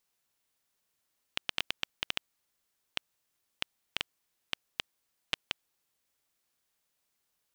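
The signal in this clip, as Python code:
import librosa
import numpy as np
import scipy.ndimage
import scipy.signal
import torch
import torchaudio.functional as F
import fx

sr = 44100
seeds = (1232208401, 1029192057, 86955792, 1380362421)

y = fx.geiger_clicks(sr, seeds[0], length_s=4.19, per_s=4.3, level_db=-10.5)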